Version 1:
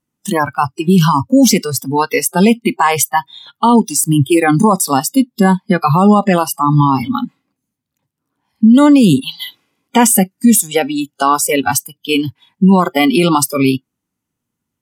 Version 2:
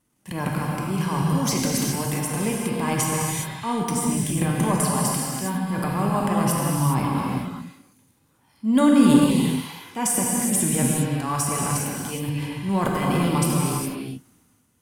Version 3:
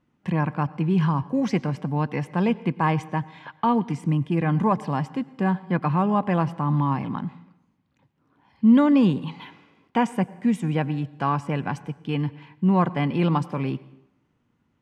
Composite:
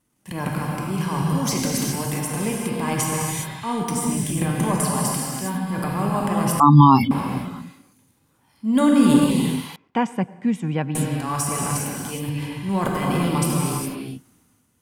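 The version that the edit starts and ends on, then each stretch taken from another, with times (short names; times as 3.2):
2
6.6–7.11 from 1
9.76–10.95 from 3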